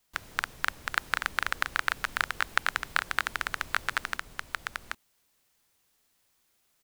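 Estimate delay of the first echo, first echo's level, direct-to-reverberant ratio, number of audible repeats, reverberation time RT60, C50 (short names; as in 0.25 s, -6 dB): 0.782 s, -3.0 dB, none, 1, none, none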